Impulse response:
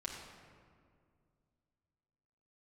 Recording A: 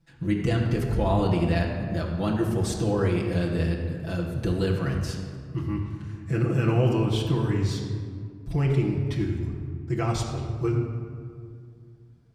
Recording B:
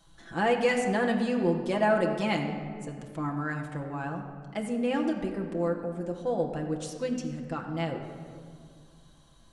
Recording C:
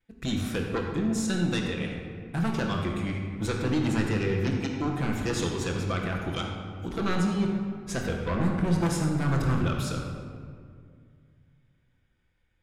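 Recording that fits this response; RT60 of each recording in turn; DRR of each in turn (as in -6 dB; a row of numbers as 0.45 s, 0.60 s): A; 2.1 s, 2.2 s, 2.1 s; -4.5 dB, 0.5 dB, -12.0 dB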